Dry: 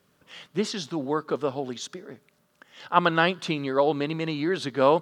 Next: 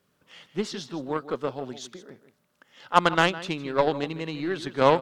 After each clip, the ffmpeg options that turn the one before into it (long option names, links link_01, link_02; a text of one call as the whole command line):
ffmpeg -i in.wav -filter_complex "[0:a]asplit=2[link_01][link_02];[link_02]adelay=157.4,volume=-12dB,highshelf=frequency=4000:gain=-3.54[link_03];[link_01][link_03]amix=inputs=2:normalize=0,aeval=exprs='0.631*(cos(1*acos(clip(val(0)/0.631,-1,1)))-cos(1*PI/2))+0.0447*(cos(7*acos(clip(val(0)/0.631,-1,1)))-cos(7*PI/2))+0.00794*(cos(8*acos(clip(val(0)/0.631,-1,1)))-cos(8*PI/2))':channel_layout=same,volume=1.5dB" out.wav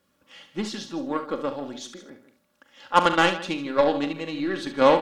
ffmpeg -i in.wav -filter_complex "[0:a]aecho=1:1:3.6:0.55,asplit=2[link_01][link_02];[link_02]aecho=0:1:42|70:0.266|0.282[link_03];[link_01][link_03]amix=inputs=2:normalize=0" out.wav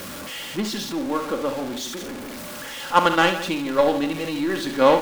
ffmpeg -i in.wav -af "aeval=exprs='val(0)+0.5*0.0316*sgn(val(0))':channel_layout=same,volume=1dB" out.wav